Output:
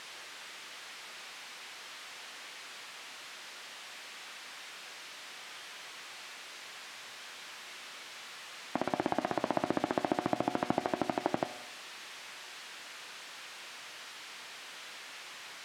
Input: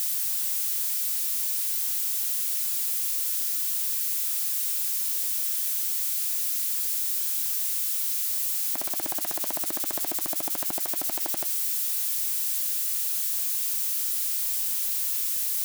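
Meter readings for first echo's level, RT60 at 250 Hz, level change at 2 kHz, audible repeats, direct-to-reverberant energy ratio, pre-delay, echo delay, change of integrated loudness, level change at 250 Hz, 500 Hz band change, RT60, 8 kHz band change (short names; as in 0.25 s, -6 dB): none, 1.0 s, +1.5 dB, none, 11.0 dB, 8 ms, none, -15.5 dB, +8.5 dB, +7.0 dB, 1.0 s, -22.0 dB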